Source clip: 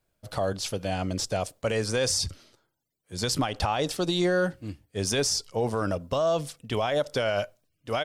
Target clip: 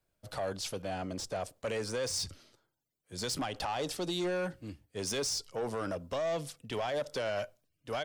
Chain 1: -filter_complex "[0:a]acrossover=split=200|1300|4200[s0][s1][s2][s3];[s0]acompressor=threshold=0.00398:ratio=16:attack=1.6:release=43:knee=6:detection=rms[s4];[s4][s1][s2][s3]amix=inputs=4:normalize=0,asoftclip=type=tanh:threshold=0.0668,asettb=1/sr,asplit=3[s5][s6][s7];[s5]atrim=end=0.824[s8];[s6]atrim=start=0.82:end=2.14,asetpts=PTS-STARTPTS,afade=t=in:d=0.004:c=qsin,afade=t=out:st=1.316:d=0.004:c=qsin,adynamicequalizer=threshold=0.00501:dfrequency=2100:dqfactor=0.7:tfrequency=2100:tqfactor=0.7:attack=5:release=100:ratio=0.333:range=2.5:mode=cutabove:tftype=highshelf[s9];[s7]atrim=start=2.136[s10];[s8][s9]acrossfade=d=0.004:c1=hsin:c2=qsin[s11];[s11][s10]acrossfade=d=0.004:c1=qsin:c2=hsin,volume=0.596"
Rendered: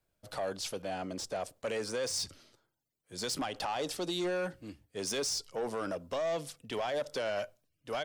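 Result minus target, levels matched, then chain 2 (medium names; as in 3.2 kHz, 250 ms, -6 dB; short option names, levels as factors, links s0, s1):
compression: peak gain reduction +10 dB
-filter_complex "[0:a]acrossover=split=200|1300|4200[s0][s1][s2][s3];[s0]acompressor=threshold=0.0133:ratio=16:attack=1.6:release=43:knee=6:detection=rms[s4];[s4][s1][s2][s3]amix=inputs=4:normalize=0,asoftclip=type=tanh:threshold=0.0668,asettb=1/sr,asplit=3[s5][s6][s7];[s5]atrim=end=0.824[s8];[s6]atrim=start=0.82:end=2.14,asetpts=PTS-STARTPTS,afade=t=in:d=0.004:c=qsin,afade=t=out:st=1.316:d=0.004:c=qsin,adynamicequalizer=threshold=0.00501:dfrequency=2100:dqfactor=0.7:tfrequency=2100:tqfactor=0.7:attack=5:release=100:ratio=0.333:range=2.5:mode=cutabove:tftype=highshelf[s9];[s7]atrim=start=2.136[s10];[s8][s9]acrossfade=d=0.004:c1=hsin:c2=qsin[s11];[s11][s10]acrossfade=d=0.004:c1=qsin:c2=hsin,volume=0.596"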